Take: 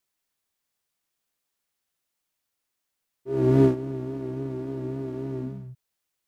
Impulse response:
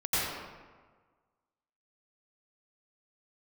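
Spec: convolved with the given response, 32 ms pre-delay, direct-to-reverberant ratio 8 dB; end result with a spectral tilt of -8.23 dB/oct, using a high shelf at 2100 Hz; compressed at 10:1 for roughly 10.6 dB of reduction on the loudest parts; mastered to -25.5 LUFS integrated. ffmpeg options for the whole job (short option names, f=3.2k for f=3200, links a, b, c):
-filter_complex "[0:a]highshelf=f=2.1k:g=-8,acompressor=threshold=-24dB:ratio=10,asplit=2[a][b];[1:a]atrim=start_sample=2205,adelay=32[c];[b][c]afir=irnorm=-1:irlink=0,volume=-19dB[d];[a][d]amix=inputs=2:normalize=0,volume=6dB"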